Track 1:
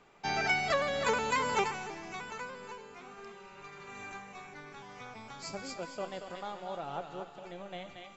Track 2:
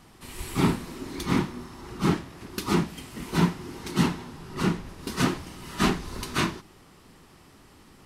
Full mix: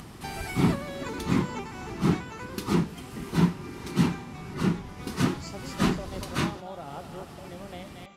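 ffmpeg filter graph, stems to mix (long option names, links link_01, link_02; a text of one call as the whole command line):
ffmpeg -i stem1.wav -i stem2.wav -filter_complex "[0:a]acompressor=threshold=-36dB:ratio=6,volume=0dB[link_01];[1:a]acompressor=mode=upward:threshold=-33dB:ratio=2.5,volume=-4.5dB[link_02];[link_01][link_02]amix=inputs=2:normalize=0,highpass=frequency=100:poles=1,lowshelf=frequency=220:gain=10.5" out.wav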